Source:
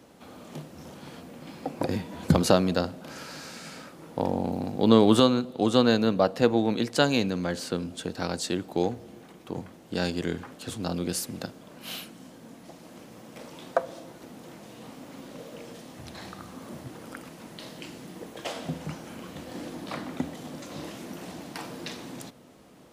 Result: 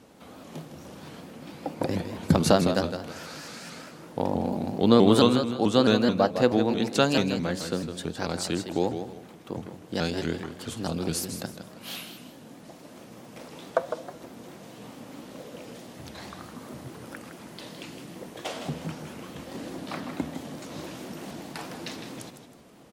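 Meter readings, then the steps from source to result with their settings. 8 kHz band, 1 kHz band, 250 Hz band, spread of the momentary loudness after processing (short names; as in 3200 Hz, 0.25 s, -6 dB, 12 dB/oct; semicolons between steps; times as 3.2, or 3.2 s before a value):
+0.5 dB, +0.5 dB, +0.5 dB, 22 LU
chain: feedback echo 0.159 s, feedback 31%, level -8.5 dB; shaped vibrato saw up 4.6 Hz, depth 160 cents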